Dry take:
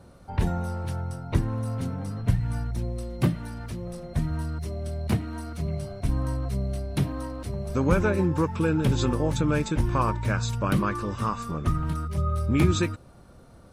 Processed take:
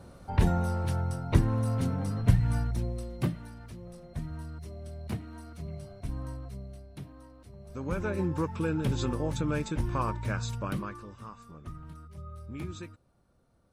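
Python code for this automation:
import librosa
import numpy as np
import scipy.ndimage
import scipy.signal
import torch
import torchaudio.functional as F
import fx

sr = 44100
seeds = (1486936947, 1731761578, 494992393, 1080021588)

y = fx.gain(x, sr, db=fx.line((2.56, 1.0), (3.59, -10.0), (6.28, -10.0), (6.97, -18.0), (7.51, -18.0), (8.22, -6.0), (10.54, -6.0), (11.19, -17.5)))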